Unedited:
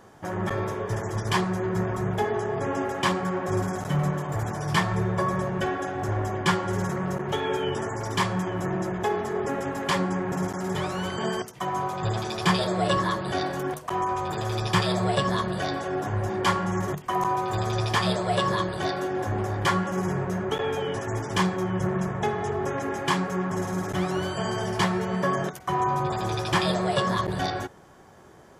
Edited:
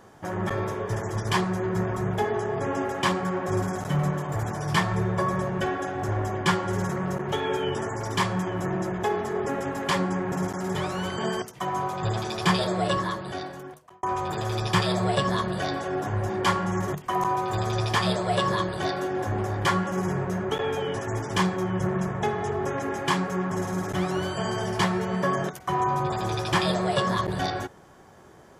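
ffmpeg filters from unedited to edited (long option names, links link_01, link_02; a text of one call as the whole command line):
ffmpeg -i in.wav -filter_complex "[0:a]asplit=2[link_01][link_02];[link_01]atrim=end=14.03,asetpts=PTS-STARTPTS,afade=type=out:start_time=12.68:duration=1.35[link_03];[link_02]atrim=start=14.03,asetpts=PTS-STARTPTS,afade=type=in:duration=0.004:curve=hsin[link_04];[link_03][link_04]concat=n=2:v=0:a=1" out.wav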